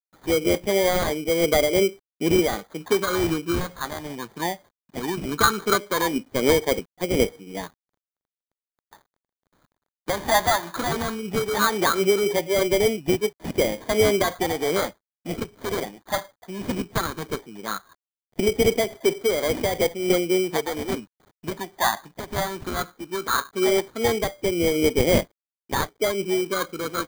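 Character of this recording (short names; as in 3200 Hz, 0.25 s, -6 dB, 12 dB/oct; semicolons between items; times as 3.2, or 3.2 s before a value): a quantiser's noise floor 10-bit, dither none; phasing stages 8, 0.17 Hz, lowest notch 440–1500 Hz; aliases and images of a low sample rate 2700 Hz, jitter 0%; noise-modulated level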